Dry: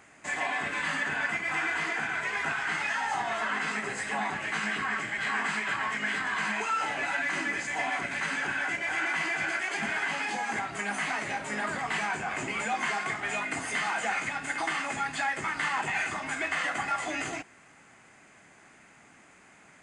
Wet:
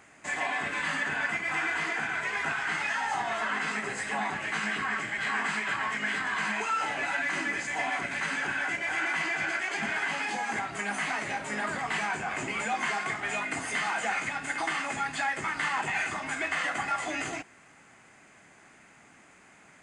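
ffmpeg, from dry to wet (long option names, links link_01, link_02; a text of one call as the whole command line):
ffmpeg -i in.wav -filter_complex "[0:a]asettb=1/sr,asplit=3[link_01][link_02][link_03];[link_01]atrim=end=9.224[link_04];[link_02]atrim=start=9.22:end=9.96,asetpts=PTS-STARTPTS,afade=type=in:duration=0.004:curve=qsin,afade=type=out:start_time=0.736:duration=0.004:curve=qsin,lowpass=9300[link_05];[link_03]atrim=start=9.956[link_06];[link_04][link_05]acrossfade=duration=0.004:curve1=hsin:curve2=qsin[link_07];[link_07][link_06]acrossfade=duration=0.004:curve1=qsin:curve2=hsin" out.wav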